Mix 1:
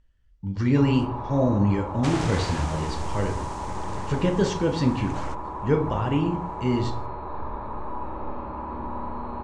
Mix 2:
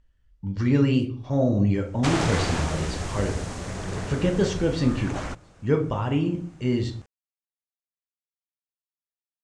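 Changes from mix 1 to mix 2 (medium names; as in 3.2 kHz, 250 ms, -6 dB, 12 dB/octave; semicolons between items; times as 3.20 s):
first sound: muted; second sound +5.0 dB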